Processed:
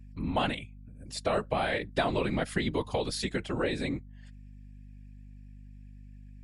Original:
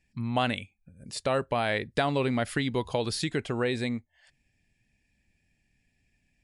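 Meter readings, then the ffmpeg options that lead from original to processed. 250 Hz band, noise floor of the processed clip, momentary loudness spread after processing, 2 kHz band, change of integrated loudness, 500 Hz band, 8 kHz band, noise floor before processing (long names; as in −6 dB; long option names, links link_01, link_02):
−2.0 dB, −49 dBFS, 10 LU, −2.0 dB, −2.0 dB, −2.0 dB, −2.5 dB, −74 dBFS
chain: -af "afftfilt=real='hypot(re,im)*cos(2*PI*random(0))':imag='hypot(re,im)*sin(2*PI*random(1))':win_size=512:overlap=0.75,aeval=exprs='val(0)+0.00282*(sin(2*PI*50*n/s)+sin(2*PI*2*50*n/s)/2+sin(2*PI*3*50*n/s)/3+sin(2*PI*4*50*n/s)/4+sin(2*PI*5*50*n/s)/5)':channel_layout=same,volume=4dB"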